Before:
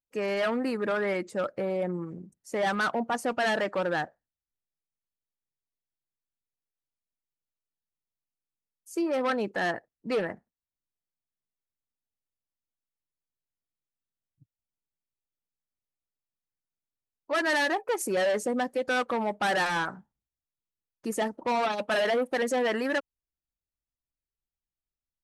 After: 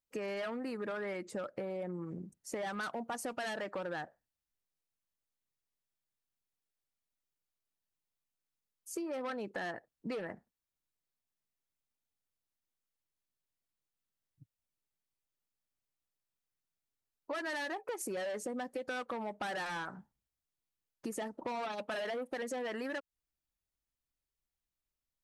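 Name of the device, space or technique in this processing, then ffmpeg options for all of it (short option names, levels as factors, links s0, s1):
serial compression, peaks first: -filter_complex "[0:a]asettb=1/sr,asplit=3[s0][s1][s2];[s0]atrim=end=2.834[s3];[s1]atrim=start=2.83:end=3.54,asetpts=PTS-STARTPTS,afade=t=in:d=0.004:c=qsin,afade=t=out:st=0.706:d=0.004:c=qsin,highshelf=f=5100:g=8.5[s4];[s2]atrim=start=3.536[s5];[s3][s4]acrossfade=d=0.004:c1=hsin:c2=qsin[s6];[s6][s5]acrossfade=d=0.004:c1=qsin:c2=hsin,acompressor=threshold=0.02:ratio=6,acompressor=threshold=0.00708:ratio=1.5,volume=1.12"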